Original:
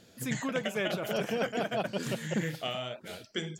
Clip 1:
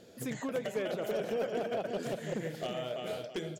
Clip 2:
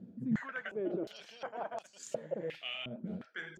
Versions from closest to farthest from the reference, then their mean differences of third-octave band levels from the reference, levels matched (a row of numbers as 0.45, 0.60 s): 1, 2; 4.5, 12.5 dB